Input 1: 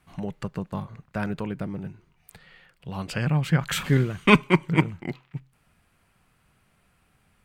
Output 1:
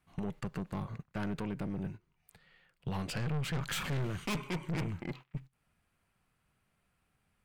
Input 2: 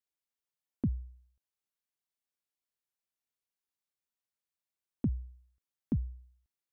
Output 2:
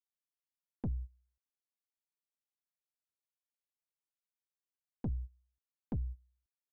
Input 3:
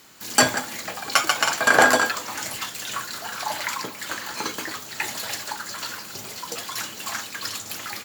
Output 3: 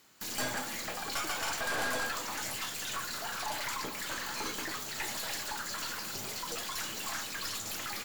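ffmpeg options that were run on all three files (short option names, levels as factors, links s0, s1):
-af "agate=range=0.126:threshold=0.00891:ratio=16:detection=peak,aeval=exprs='(tanh(25.1*val(0)+0.45)-tanh(0.45))/25.1':c=same,alimiter=level_in=4.22:limit=0.0631:level=0:latency=1:release=266,volume=0.237,volume=2.51"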